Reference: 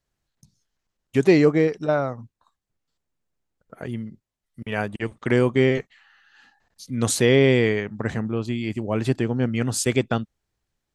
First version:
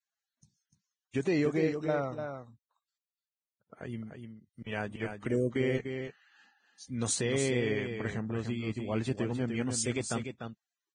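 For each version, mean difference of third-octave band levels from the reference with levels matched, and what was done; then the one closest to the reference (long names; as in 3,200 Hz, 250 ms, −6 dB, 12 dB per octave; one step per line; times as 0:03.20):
4.5 dB: gain on a spectral selection 0:05.28–0:05.56, 660–5,500 Hz −24 dB
brickwall limiter −10.5 dBFS, peak gain reduction 6 dB
on a send: single-tap delay 297 ms −7 dB
on the sum: level −9 dB
Ogg Vorbis 16 kbit/s 22,050 Hz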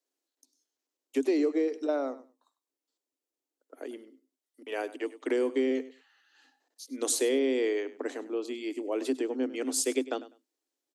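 8.0 dB: Chebyshev high-pass filter 260 Hz, order 8
parametric band 1,500 Hz −11 dB 2.3 octaves
downward compressor 4 to 1, threshold −24 dBFS, peak gain reduction 8.5 dB
on a send: repeating echo 100 ms, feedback 17%, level −16.5 dB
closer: first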